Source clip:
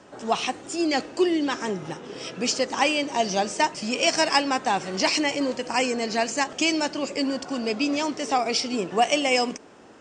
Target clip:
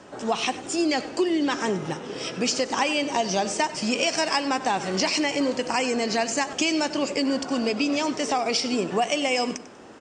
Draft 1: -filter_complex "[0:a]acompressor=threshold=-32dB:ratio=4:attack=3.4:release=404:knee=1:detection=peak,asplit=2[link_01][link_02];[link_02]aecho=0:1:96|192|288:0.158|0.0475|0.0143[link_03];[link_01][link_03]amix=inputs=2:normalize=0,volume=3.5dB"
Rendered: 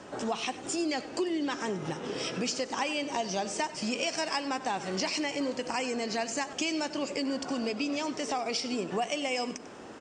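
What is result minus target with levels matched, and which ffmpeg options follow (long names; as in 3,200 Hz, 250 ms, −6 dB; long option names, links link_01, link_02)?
downward compressor: peak gain reduction +7.5 dB
-filter_complex "[0:a]acompressor=threshold=-22dB:ratio=4:attack=3.4:release=404:knee=1:detection=peak,asplit=2[link_01][link_02];[link_02]aecho=0:1:96|192|288:0.158|0.0475|0.0143[link_03];[link_01][link_03]amix=inputs=2:normalize=0,volume=3.5dB"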